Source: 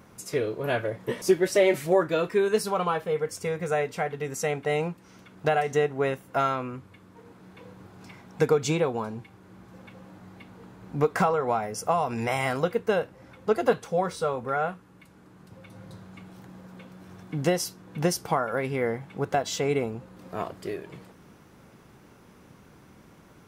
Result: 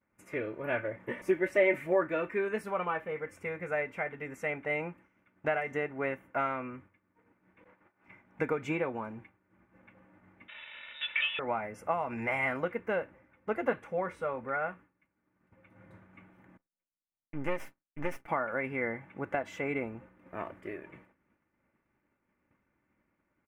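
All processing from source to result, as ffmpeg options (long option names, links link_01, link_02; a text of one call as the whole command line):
ffmpeg -i in.wav -filter_complex "[0:a]asettb=1/sr,asplit=3[link_01][link_02][link_03];[link_01]atrim=end=7.644[link_04];[link_02]atrim=start=7.64:end=8.08,asetpts=PTS-STARTPTS,afade=type=in:duration=0.004:curve=qsin,afade=type=out:start_time=0.436:duration=0.004:curve=qsin,agate=range=-33dB:threshold=-38dB:ratio=3:release=100:detection=peak,asplit=2[link_05][link_06];[link_06]highpass=frequency=720:poles=1,volume=22dB,asoftclip=type=tanh:threshold=-44dB[link_07];[link_05][link_07]amix=inputs=2:normalize=0,lowpass=frequency=2600:poles=1,volume=-6dB,acontrast=59[link_08];[link_03]atrim=start=8.076[link_09];[link_04][link_08]acrossfade=duration=0.004:curve1=hsin:curve2=qsin[link_10];[link_10][link_09]acrossfade=duration=0.004:curve1=qsin:curve2=hsin,asettb=1/sr,asplit=3[link_11][link_12][link_13];[link_11]atrim=end=10.484[link_14];[link_12]atrim=start=10.48:end=11.39,asetpts=PTS-STARTPTS,afade=type=in:duration=0.004:curve=qsin,afade=type=out:start_time=0.906:duration=0.004:curve=qsin,aeval=exprs='val(0)+0.5*0.0224*sgn(val(0))':channel_layout=same,aecho=1:1:2.4:0.58,atrim=end_sample=40131,lowpass=frequency=3300:width_type=q:width=0.5098,lowpass=frequency=3300:width_type=q:width=0.6013,lowpass=frequency=3300:width_type=q:width=0.9,lowpass=frequency=3300:width_type=q:width=2.563,afreqshift=-3900[link_15];[link_13]atrim=start=11.386[link_16];[link_14][link_15]acrossfade=duration=0.004:curve1=hsin:curve2=qsin[link_17];[link_17][link_16]acrossfade=duration=0.004:curve1=qsin:curve2=hsin,asettb=1/sr,asplit=3[link_18][link_19][link_20];[link_18]atrim=end=16.574[link_21];[link_19]atrim=start=16.57:end=18.28,asetpts=PTS-STARTPTS,afade=type=in:duration=0.004:curve=qsin,afade=type=out:start_time=1.706:duration=0.004:curve=qsin,agate=range=-33dB:threshold=-36dB:ratio=3:release=100:detection=peak,aecho=1:1:7.3:0.48,atrim=end_sample=75411,aeval=exprs='max(val(0),0)':channel_layout=same[link_22];[link_20]atrim=start=18.276[link_23];[link_21][link_22]acrossfade=duration=0.004:curve1=hsin:curve2=qsin[link_24];[link_24][link_23]acrossfade=duration=0.004:curve1=qsin:curve2=hsin,agate=range=-33dB:threshold=-41dB:ratio=3:detection=peak,highshelf=frequency=3100:width_type=q:width=3:gain=-12.5,aecho=1:1:3.4:0.4,volume=-7.5dB" out.wav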